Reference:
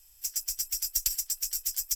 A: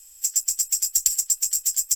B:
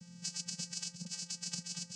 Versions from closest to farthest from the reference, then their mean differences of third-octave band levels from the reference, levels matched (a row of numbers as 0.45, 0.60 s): A, B; 3.5, 16.5 dB